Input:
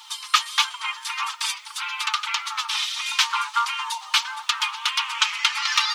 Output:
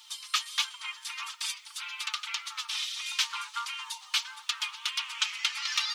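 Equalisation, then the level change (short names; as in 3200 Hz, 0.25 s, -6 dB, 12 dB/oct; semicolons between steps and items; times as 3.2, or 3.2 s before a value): bell 760 Hz -11 dB 2.1 oct; -6.0 dB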